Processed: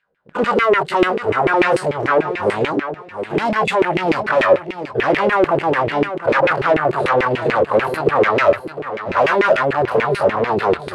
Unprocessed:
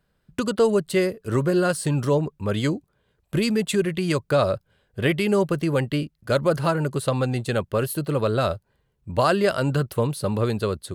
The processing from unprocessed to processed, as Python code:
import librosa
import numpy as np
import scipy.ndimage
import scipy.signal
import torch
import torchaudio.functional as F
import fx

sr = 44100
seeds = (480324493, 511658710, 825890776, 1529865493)

y = fx.spec_dilate(x, sr, span_ms=60)
y = fx.low_shelf(y, sr, hz=94.0, db=6.0)
y = fx.hpss(y, sr, part='percussive', gain_db=-12)
y = fx.leveller(y, sr, passes=2)
y = fx.fold_sine(y, sr, drive_db=9, ceiling_db=-5.5)
y = fx.echo_feedback(y, sr, ms=710, feedback_pct=22, wet_db=-10)
y = fx.filter_lfo_bandpass(y, sr, shape='saw_down', hz=6.8, low_hz=340.0, high_hz=2500.0, q=3.6)
y = F.gain(torch.from_numpy(y), 3.0).numpy()